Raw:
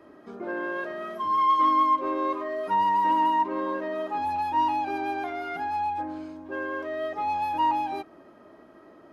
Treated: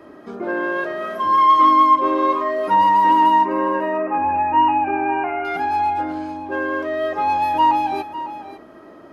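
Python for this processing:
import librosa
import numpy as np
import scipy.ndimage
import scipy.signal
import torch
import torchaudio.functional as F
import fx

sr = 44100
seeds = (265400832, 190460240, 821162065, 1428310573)

y = fx.brickwall_lowpass(x, sr, high_hz=2900.0, at=(3.45, 5.45))
y = y + 10.0 ** (-13.5 / 20.0) * np.pad(y, (int(552 * sr / 1000.0), 0))[:len(y)]
y = y * 10.0 ** (8.5 / 20.0)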